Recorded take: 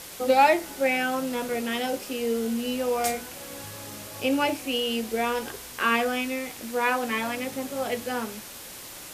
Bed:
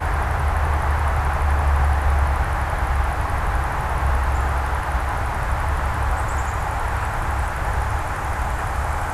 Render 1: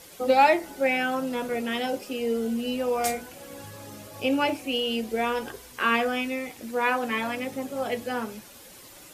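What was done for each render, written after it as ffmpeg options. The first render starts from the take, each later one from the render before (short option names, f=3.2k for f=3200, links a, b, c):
-af "afftdn=nr=9:nf=-42"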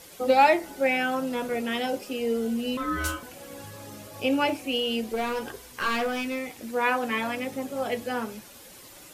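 -filter_complex "[0:a]asettb=1/sr,asplit=3[a][b][c];[a]atrim=end=2.774[d];[b]atrim=start=2.77:end=3.23,asetpts=PTS-STARTPTS,afade=t=in:d=0.004:c=qsin,afade=t=out:st=0.456:d=0.004:c=qsin,aeval=exprs='val(0)*sin(2*PI*790*n/s)':c=same[e];[c]atrim=start=3.226[f];[d][e]acrossfade=d=0.004:c1=hsin:c2=qsin[g];[g][f]acrossfade=d=0.004:c1=qsin:c2=hsin,asettb=1/sr,asplit=3[h][i][j];[h]atrim=end=5.034[k];[i]atrim=start=5.03:end=6.59,asetpts=PTS-STARTPTS,afade=t=in:d=0.004:c=qsin,afade=t=out:st=1.556:d=0.004:c=qsin,aeval=exprs='clip(val(0),-1,0.0562)':c=same[l];[j]atrim=start=6.586[m];[k][l]acrossfade=d=0.004:c1=hsin:c2=qsin[n];[n][m]acrossfade=d=0.004:c1=qsin:c2=hsin"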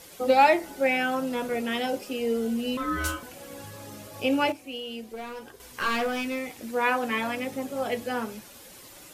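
-filter_complex "[0:a]asplit=3[a][b][c];[a]atrim=end=4.522[d];[b]atrim=start=4.518:end=5.602,asetpts=PTS-STARTPTS,volume=-9dB[e];[c]atrim=start=5.598[f];[d][e]acrossfade=d=0.004:c1=hsin:c2=hsin[g];[g][f]acrossfade=d=0.004:c1=hsin:c2=hsin"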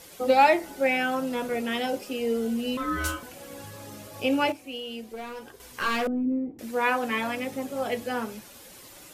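-filter_complex "[0:a]asettb=1/sr,asplit=3[a][b][c];[a]atrim=end=6.074[d];[b]atrim=start=6.07:end=6.59,asetpts=PTS-STARTPTS,afade=t=in:d=0.004:c=qsin,afade=t=out:st=0.516:d=0.004:c=qsin,lowpass=f=310:t=q:w=2.7[e];[c]atrim=start=6.586[f];[d][e]acrossfade=d=0.004:c1=hsin:c2=qsin[g];[g][f]acrossfade=d=0.004:c1=qsin:c2=hsin"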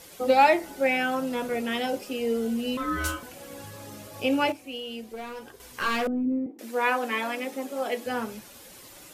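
-filter_complex "[0:a]asettb=1/sr,asplit=3[a][b][c];[a]atrim=end=6.464[d];[b]atrim=start=6.46:end=8.06,asetpts=PTS-STARTPTS,afade=t=in:d=0.004:c=qsin,afade=t=out:st=1.596:d=0.004:c=qsin,highpass=f=240:w=0.5412,highpass=f=240:w=1.3066[e];[c]atrim=start=8.056[f];[d][e]acrossfade=d=0.004:c1=hsin:c2=qsin[g];[g][f]acrossfade=d=0.004:c1=qsin:c2=hsin"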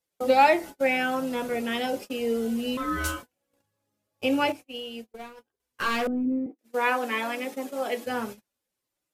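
-af "agate=range=-37dB:threshold=-36dB:ratio=16:detection=peak"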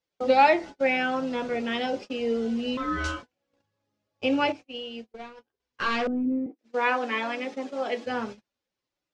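-af "lowpass=f=5.8k:w=0.5412,lowpass=f=5.8k:w=1.3066"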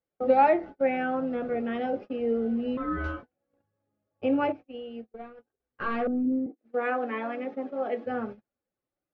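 -af "lowpass=1.3k,bandreject=f=980:w=5.4"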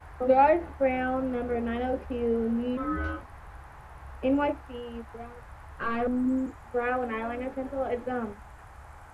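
-filter_complex "[1:a]volume=-24.5dB[a];[0:a][a]amix=inputs=2:normalize=0"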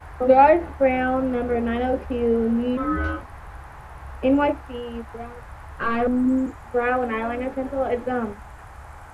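-af "volume=6.5dB"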